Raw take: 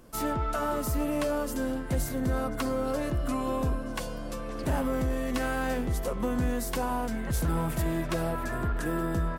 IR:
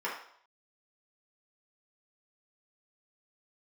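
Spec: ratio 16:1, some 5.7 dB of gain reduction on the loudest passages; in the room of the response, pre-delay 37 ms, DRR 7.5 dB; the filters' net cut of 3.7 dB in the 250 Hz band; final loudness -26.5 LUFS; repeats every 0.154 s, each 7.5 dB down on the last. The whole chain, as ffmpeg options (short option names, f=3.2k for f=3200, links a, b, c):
-filter_complex "[0:a]equalizer=f=250:t=o:g=-4.5,acompressor=threshold=-30dB:ratio=16,aecho=1:1:154|308|462|616|770:0.422|0.177|0.0744|0.0312|0.0131,asplit=2[a][b];[1:a]atrim=start_sample=2205,adelay=37[c];[b][c]afir=irnorm=-1:irlink=0,volume=-14.5dB[d];[a][d]amix=inputs=2:normalize=0,volume=8dB"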